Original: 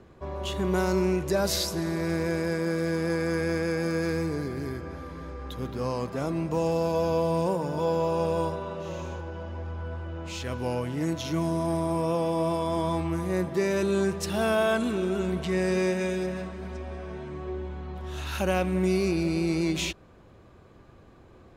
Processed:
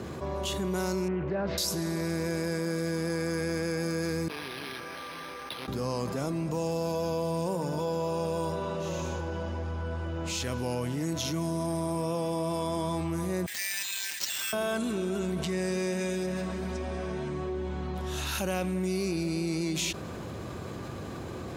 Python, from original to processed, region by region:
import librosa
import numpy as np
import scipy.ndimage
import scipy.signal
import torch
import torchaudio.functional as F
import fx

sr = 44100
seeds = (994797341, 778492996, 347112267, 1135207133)

y = fx.chain(x, sr, fx.lowpass(hz=2400.0, slope=24),
    fx.doppler_dist(depth_ms=0.2), at=(1.08, 1.58))
y = fx.chain(y, sr, fx.differentiator(),
    fx.resample_linear(factor=6), at=(4.28, 5.68))
y = fx.chain(y, sr, fx.steep_highpass(hz=1700.0, slope=72),
    fx.resample_bad(factor=4, down='none', up='hold'), at=(13.46, 14.53))
y = scipy.signal.sosfilt(scipy.signal.butter(2, 96.0, 'highpass', fs=sr, output='sos'), y)
y = fx.bass_treble(y, sr, bass_db=3, treble_db=8)
y = fx.env_flatten(y, sr, amount_pct=70)
y = y * librosa.db_to_amplitude(-7.5)